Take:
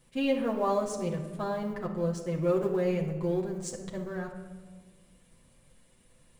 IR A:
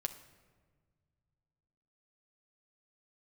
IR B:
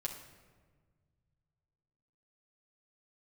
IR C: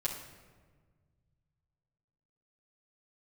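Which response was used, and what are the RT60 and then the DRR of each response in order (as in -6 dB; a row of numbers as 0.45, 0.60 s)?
B; 1.6, 1.5, 1.5 s; 5.5, -2.5, -7.0 dB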